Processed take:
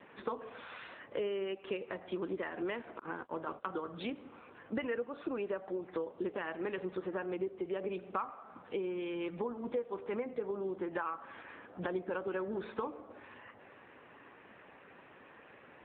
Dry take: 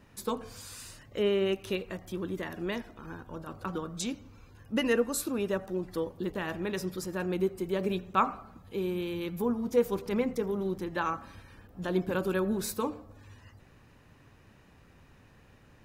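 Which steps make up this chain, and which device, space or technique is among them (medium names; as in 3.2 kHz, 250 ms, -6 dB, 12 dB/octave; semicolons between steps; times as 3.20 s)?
2.99–4.15 s: gate -44 dBFS, range -42 dB; voicemail (band-pass 380–2600 Hz; compression 6:1, threshold -43 dBFS, peak gain reduction 21 dB; trim +9 dB; AMR-NB 7.95 kbps 8 kHz)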